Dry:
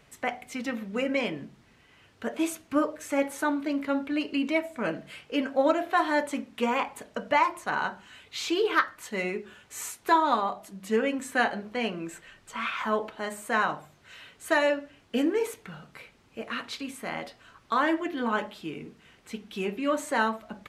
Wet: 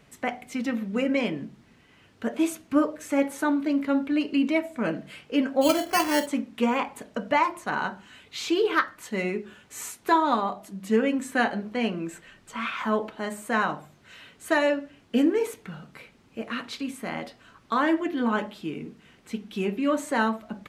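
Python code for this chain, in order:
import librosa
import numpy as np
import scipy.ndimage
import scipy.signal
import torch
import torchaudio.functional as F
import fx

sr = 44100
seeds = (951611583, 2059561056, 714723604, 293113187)

y = fx.peak_eq(x, sr, hz=220.0, db=6.0, octaves=1.5)
y = fx.sample_hold(y, sr, seeds[0], rate_hz=3700.0, jitter_pct=0, at=(5.61, 6.26), fade=0.02)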